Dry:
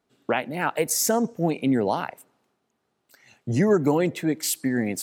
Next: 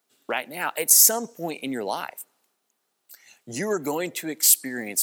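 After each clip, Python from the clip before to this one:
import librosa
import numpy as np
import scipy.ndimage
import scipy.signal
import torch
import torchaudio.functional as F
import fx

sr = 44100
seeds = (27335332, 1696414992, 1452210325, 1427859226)

y = scipy.signal.sosfilt(scipy.signal.butter(2, 110.0, 'highpass', fs=sr, output='sos'), x)
y = fx.riaa(y, sr, side='recording')
y = y * 10.0 ** (-2.5 / 20.0)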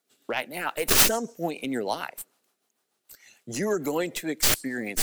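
y = fx.tracing_dist(x, sr, depth_ms=0.17)
y = fx.rotary(y, sr, hz=6.7)
y = y * 10.0 ** (2.0 / 20.0)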